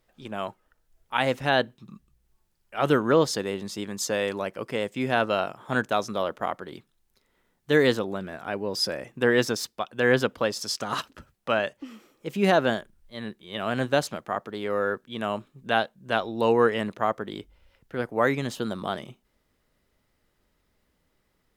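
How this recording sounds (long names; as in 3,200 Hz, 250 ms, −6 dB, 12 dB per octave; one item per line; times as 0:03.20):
background noise floor −72 dBFS
spectral slope −4.5 dB per octave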